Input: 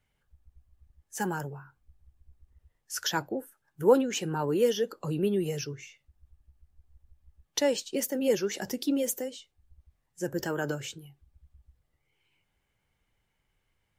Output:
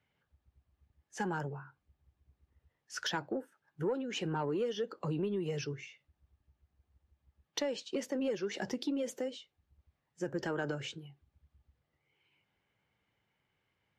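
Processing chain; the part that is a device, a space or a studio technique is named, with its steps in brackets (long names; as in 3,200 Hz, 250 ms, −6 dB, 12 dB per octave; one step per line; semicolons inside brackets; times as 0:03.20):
AM radio (band-pass filter 110–4,100 Hz; downward compressor 8 to 1, threshold −30 dBFS, peak gain reduction 15 dB; soft clipping −23.5 dBFS, distortion −24 dB)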